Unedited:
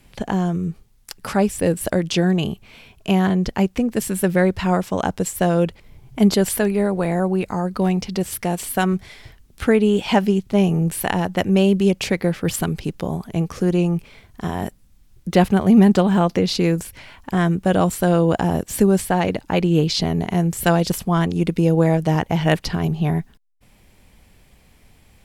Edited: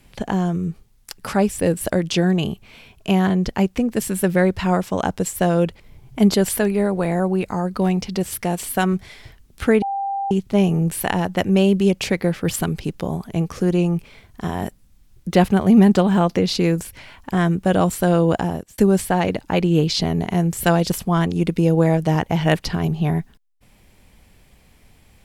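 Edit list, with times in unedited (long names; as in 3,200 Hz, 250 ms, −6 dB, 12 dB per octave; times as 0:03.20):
0:09.82–0:10.31: beep over 791 Hz −21 dBFS
0:18.34–0:18.78: fade out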